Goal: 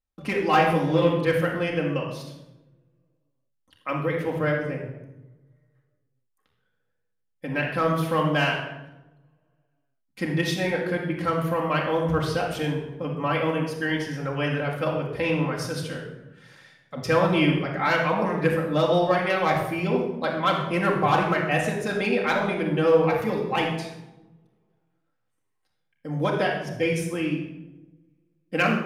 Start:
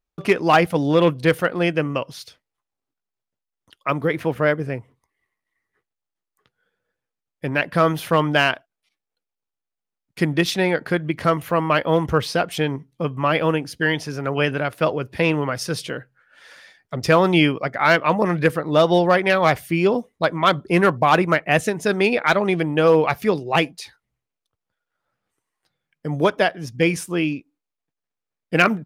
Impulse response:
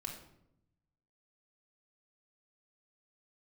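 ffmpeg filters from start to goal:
-filter_complex "[0:a]asettb=1/sr,asplit=3[link_01][link_02][link_03];[link_01]atrim=end=0.504[link_04];[link_02]atrim=start=0.5:end=1.03,asetpts=PTS-STARTPTS,afade=type=in:duration=0.004:curve=qsin,afade=type=out:start_time=0.526:duration=0.004:curve=qsin,asplit=2[link_05][link_06];[link_06]adelay=19,volume=-4.5dB[link_07];[link_05][link_07]amix=inputs=2:normalize=0,atrim=end_sample=23373[link_08];[link_03]atrim=start=1.026[link_09];[link_04][link_08]acrossfade=duration=0.004:curve1=hsin:curve2=qsin[link_10];[link_10][link_09]acrossfade=duration=0.004:curve1=qsin:curve2=hsin[link_11];[1:a]atrim=start_sample=2205,asetrate=30870,aresample=44100[link_12];[link_11][link_12]afir=irnorm=-1:irlink=0,volume=-6dB"

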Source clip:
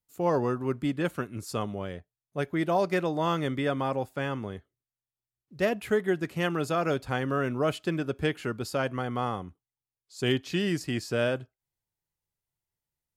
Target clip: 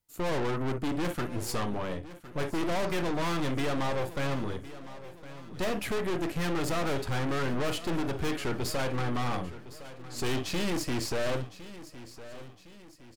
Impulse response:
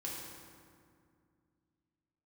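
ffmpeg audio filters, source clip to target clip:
-filter_complex "[0:a]asplit=2[link_01][link_02];[1:a]atrim=start_sample=2205,atrim=end_sample=3087[link_03];[link_02][link_03]afir=irnorm=-1:irlink=0,volume=-5dB[link_04];[link_01][link_04]amix=inputs=2:normalize=0,aeval=exprs='(tanh(63.1*val(0)+0.75)-tanh(0.75))/63.1':channel_layout=same,asplit=2[link_05][link_06];[link_06]aecho=0:1:1060|2120|3180|4240:0.168|0.0772|0.0355|0.0163[link_07];[link_05][link_07]amix=inputs=2:normalize=0,volume=7dB"

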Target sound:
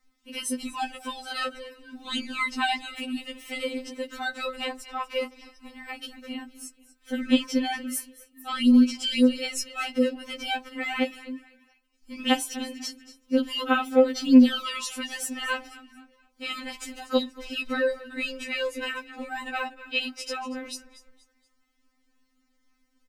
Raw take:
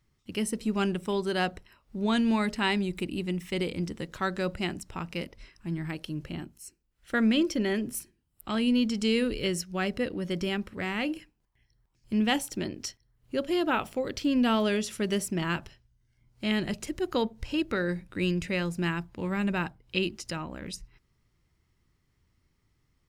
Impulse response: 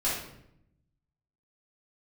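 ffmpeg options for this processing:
-filter_complex "[0:a]asettb=1/sr,asplit=3[link_01][link_02][link_03];[link_01]atrim=end=4.704[link_04];[link_02]atrim=start=4.7:end=5.15,asetpts=PTS-STARTPTS,afade=type=in:duration=0.004:curve=qsin,afade=type=out:start_time=0.446:duration=0.004:curve=qsin,equalizer=frequency=250:width_type=o:width=1:gain=-11,equalizer=frequency=1000:width_type=o:width=1:gain=9,equalizer=frequency=8000:width_type=o:width=1:gain=-5[link_05];[link_03]atrim=start=5.146[link_06];[link_04][link_05]acrossfade=duration=0.004:curve1=hsin:curve2=qsin[link_07];[link_07][link_06]acrossfade=duration=0.004:curve1=qsin:curve2=hsin,asplit=4[link_08][link_09][link_10][link_11];[link_09]adelay=238,afreqshift=-42,volume=-17dB[link_12];[link_10]adelay=476,afreqshift=-84,volume=-25.4dB[link_13];[link_11]adelay=714,afreqshift=-126,volume=-33.8dB[link_14];[link_08][link_12][link_13][link_14]amix=inputs=4:normalize=0,afftfilt=real='re*3.46*eq(mod(b,12),0)':imag='im*3.46*eq(mod(b,12),0)':win_size=2048:overlap=0.75,volume=5.5dB"

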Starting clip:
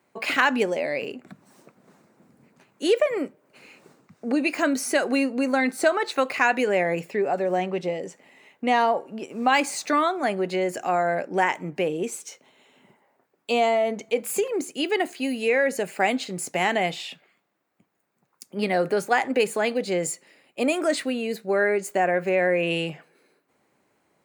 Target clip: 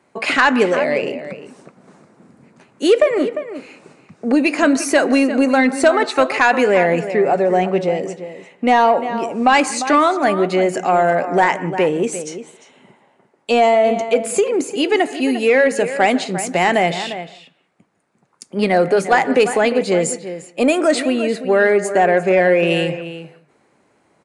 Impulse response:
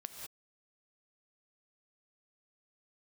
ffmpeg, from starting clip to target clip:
-filter_complex "[0:a]asplit=2[link_01][link_02];[link_02]adelay=349.9,volume=-12dB,highshelf=frequency=4000:gain=-7.87[link_03];[link_01][link_03]amix=inputs=2:normalize=0,asplit=2[link_04][link_05];[1:a]atrim=start_sample=2205,asetrate=48510,aresample=44100,lowpass=2200[link_06];[link_05][link_06]afir=irnorm=-1:irlink=0,volume=-6dB[link_07];[link_04][link_07]amix=inputs=2:normalize=0,acontrast=82,aresample=22050,aresample=44100"

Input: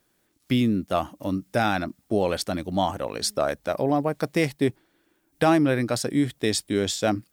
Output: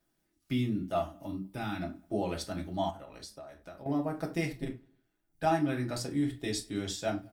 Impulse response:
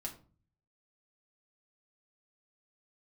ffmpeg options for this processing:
-filter_complex "[0:a]asubboost=boost=4:cutoff=68,aphaser=in_gain=1:out_gain=1:delay=1.6:decay=0.2:speed=0.48:type=triangular,asettb=1/sr,asplit=3[link_01][link_02][link_03];[link_01]atrim=end=1.264[link_04];[link_02]atrim=start=1.26:end=1.81,asetpts=PTS-STARTPTS,afade=type=in:duration=0.004:curve=qsin,afade=type=out:start_time=0.546:duration=0.004:curve=qsin,equalizer=frequency=630:width_type=o:width=0.67:gain=-10,equalizer=frequency=1600:width_type=o:width=0.67:gain=-6,equalizer=frequency=6300:width_type=o:width=0.67:gain=-10[link_05];[link_03]atrim=start=1.806[link_06];[link_04][link_05]acrossfade=duration=0.004:curve1=hsin:curve2=qsin[link_07];[link_07][link_06]acrossfade=duration=0.004:curve1=qsin:curve2=hsin,asettb=1/sr,asplit=3[link_08][link_09][link_10];[link_08]atrim=end=4.614[link_11];[link_09]atrim=start=4.61:end=5.44,asetpts=PTS-STARTPTS,afade=type=in:duration=0.004:curve=qsin,afade=type=out:start_time=0.826:duration=0.004:curve=qsin,tremolo=f=110:d=0.919[link_12];[link_10]atrim=start=5.436[link_13];[link_11][link_12]acrossfade=duration=0.004:curve1=hsin:curve2=qsin[link_14];[link_14][link_13]acrossfade=duration=0.004:curve1=qsin:curve2=hsin[link_15];[1:a]atrim=start_sample=2205,atrim=end_sample=3969[link_16];[link_15][link_16]afir=irnorm=-1:irlink=0,asettb=1/sr,asplit=3[link_17][link_18][link_19];[link_17]atrim=end=2.904[link_20];[link_18]atrim=start=2.9:end=3.86,asetpts=PTS-STARTPTS,afade=type=in:duration=0.004:curve=qsin,afade=type=out:start_time=0.956:duration=0.004:curve=qsin,acompressor=threshold=-36dB:ratio=12[link_21];[link_19]atrim=start=3.856[link_22];[link_20][link_21]acrossfade=duration=0.004:curve1=hsin:curve2=qsin[link_23];[link_23][link_22]acrossfade=duration=0.004:curve1=qsin:curve2=hsin,asplit=2[link_24][link_25];[link_25]adelay=99,lowpass=frequency=3900:poles=1,volume=-22dB,asplit=2[link_26][link_27];[link_27]adelay=99,lowpass=frequency=3900:poles=1,volume=0.44,asplit=2[link_28][link_29];[link_29]adelay=99,lowpass=frequency=3900:poles=1,volume=0.44[link_30];[link_24][link_26][link_28][link_30]amix=inputs=4:normalize=0,volume=-8dB"

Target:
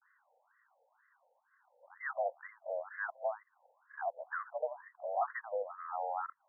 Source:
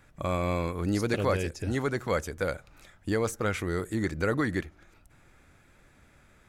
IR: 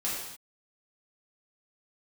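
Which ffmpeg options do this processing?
-af "areverse,highpass=frequency=230:width_type=q:width=0.5412,highpass=frequency=230:width_type=q:width=1.307,lowpass=frequency=3100:width_type=q:width=0.5176,lowpass=frequency=3100:width_type=q:width=0.7071,lowpass=frequency=3100:width_type=q:width=1.932,afreqshift=200,afftfilt=real='re*between(b*sr/1024,640*pow(1500/640,0.5+0.5*sin(2*PI*2.1*pts/sr))/1.41,640*pow(1500/640,0.5+0.5*sin(2*PI*2.1*pts/sr))*1.41)':imag='im*between(b*sr/1024,640*pow(1500/640,0.5+0.5*sin(2*PI*2.1*pts/sr))/1.41,640*pow(1500/640,0.5+0.5*sin(2*PI*2.1*pts/sr))*1.41)':win_size=1024:overlap=0.75,volume=-4.5dB"

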